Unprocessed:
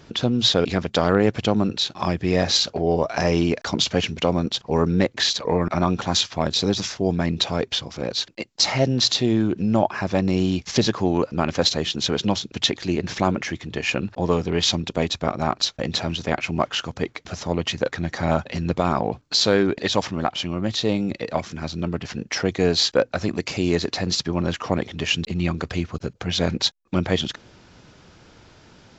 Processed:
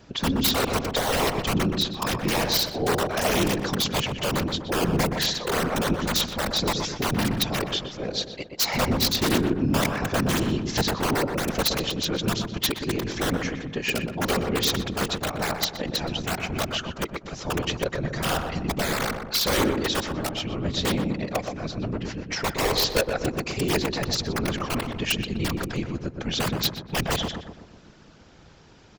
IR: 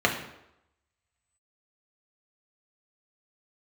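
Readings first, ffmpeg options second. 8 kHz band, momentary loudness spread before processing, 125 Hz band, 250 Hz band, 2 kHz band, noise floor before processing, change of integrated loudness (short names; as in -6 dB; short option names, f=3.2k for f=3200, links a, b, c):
n/a, 7 LU, -3.5 dB, -4.0 dB, +0.5 dB, -52 dBFS, -3.0 dB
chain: -filter_complex "[0:a]aeval=exprs='(mod(3.35*val(0)+1,2)-1)/3.35':c=same,afftfilt=real='hypot(re,im)*cos(2*PI*random(0))':imag='hypot(re,im)*sin(2*PI*random(1))':win_size=512:overlap=0.75,asplit=2[a][b];[b]adelay=123,lowpass=f=1.3k:p=1,volume=-4.5dB,asplit=2[c][d];[d]adelay=123,lowpass=f=1.3k:p=1,volume=0.54,asplit=2[e][f];[f]adelay=123,lowpass=f=1.3k:p=1,volume=0.54,asplit=2[g][h];[h]adelay=123,lowpass=f=1.3k:p=1,volume=0.54,asplit=2[i][j];[j]adelay=123,lowpass=f=1.3k:p=1,volume=0.54,asplit=2[k][l];[l]adelay=123,lowpass=f=1.3k:p=1,volume=0.54,asplit=2[m][n];[n]adelay=123,lowpass=f=1.3k:p=1,volume=0.54[o];[a][c][e][g][i][k][m][o]amix=inputs=8:normalize=0,volume=2.5dB"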